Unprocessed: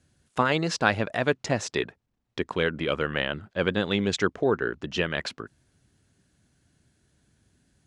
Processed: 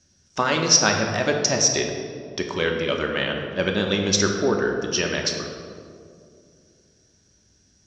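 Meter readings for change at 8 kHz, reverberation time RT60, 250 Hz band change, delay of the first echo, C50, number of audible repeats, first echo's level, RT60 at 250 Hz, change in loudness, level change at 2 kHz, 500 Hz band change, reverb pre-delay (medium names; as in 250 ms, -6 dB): +18.5 dB, 2.4 s, +3.5 dB, no echo, 4.0 dB, no echo, no echo, 3.0 s, +5.5 dB, +3.0 dB, +3.5 dB, 3 ms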